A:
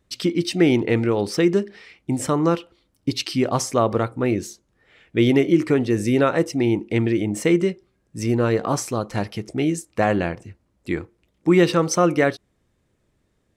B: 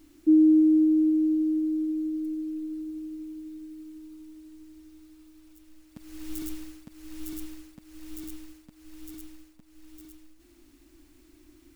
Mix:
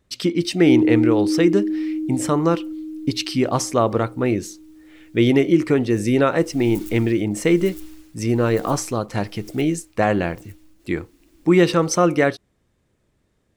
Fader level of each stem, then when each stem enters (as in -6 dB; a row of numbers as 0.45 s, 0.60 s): +1.0 dB, +1.0 dB; 0.00 s, 0.40 s